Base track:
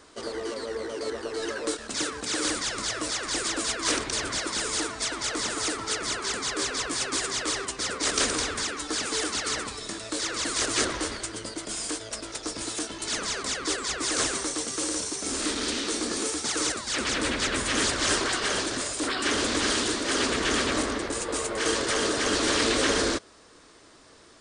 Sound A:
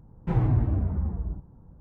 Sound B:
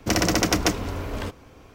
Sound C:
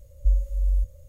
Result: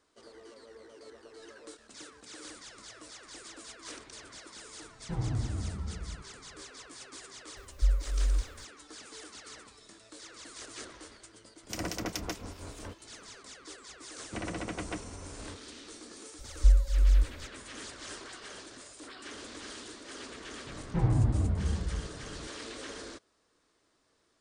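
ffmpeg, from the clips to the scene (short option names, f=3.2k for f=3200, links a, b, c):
-filter_complex "[1:a]asplit=2[a][b];[3:a]asplit=2[c][d];[2:a]asplit=2[e][f];[0:a]volume=-19dB[g];[c]acrusher=bits=9:mix=0:aa=0.000001[h];[e]acrossover=split=2300[i][j];[i]aeval=exprs='val(0)*(1-0.7/2+0.7/2*cos(2*PI*4.8*n/s))':c=same[k];[j]aeval=exprs='val(0)*(1-0.7/2-0.7/2*cos(2*PI*4.8*n/s))':c=same[l];[k][l]amix=inputs=2:normalize=0[m];[f]lowpass=f=3.3k:w=0.5412,lowpass=f=3.3k:w=1.3066[n];[b]acompressor=mode=upward:threshold=-34dB:ratio=2.5:attack=3.2:release=140:knee=2.83:detection=peak[o];[a]atrim=end=1.8,asetpts=PTS-STARTPTS,volume=-9.5dB,afade=t=in:d=0.004:c=hsin,afade=t=out:st=1.796:d=0.004:c=hsin,adelay=4820[p];[h]atrim=end=1.08,asetpts=PTS-STARTPTS,volume=-5dB,afade=t=in:d=0.004:c=hsin,afade=t=out:st=1.076:d=0.004:c=hsin,adelay=7570[q];[m]atrim=end=1.74,asetpts=PTS-STARTPTS,volume=-11.5dB,afade=t=in:d=0.004:c=hsin,afade=t=out:st=1.736:d=0.004:c=hsin,adelay=11630[r];[n]atrim=end=1.74,asetpts=PTS-STARTPTS,volume=-15dB,afade=t=in:d=0.004:c=hsin,afade=t=out:st=1.736:d=0.004:c=hsin,adelay=14260[s];[d]atrim=end=1.08,asetpts=PTS-STARTPTS,afade=t=in:d=0.004:c=hsin,afade=t=out:st=1.076:d=0.004:c=hsin,adelay=16390[t];[o]atrim=end=1.8,asetpts=PTS-STARTPTS,volume=-3dB,afade=t=in:d=0.004:c=hsin,afade=t=out:st=1.796:d=0.004:c=hsin,adelay=20670[u];[g][p][q][r][s][t][u]amix=inputs=7:normalize=0"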